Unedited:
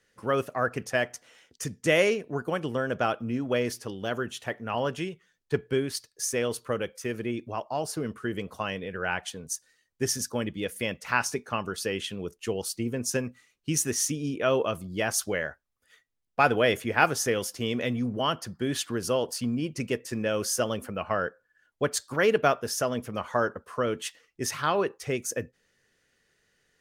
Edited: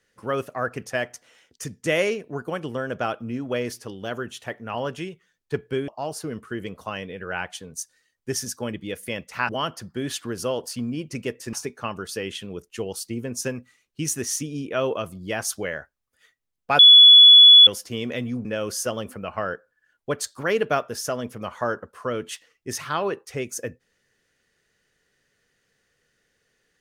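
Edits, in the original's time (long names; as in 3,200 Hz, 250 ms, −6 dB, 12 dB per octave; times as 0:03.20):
0:05.88–0:07.61: remove
0:16.48–0:17.36: beep over 3,410 Hz −6 dBFS
0:18.14–0:20.18: move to 0:11.22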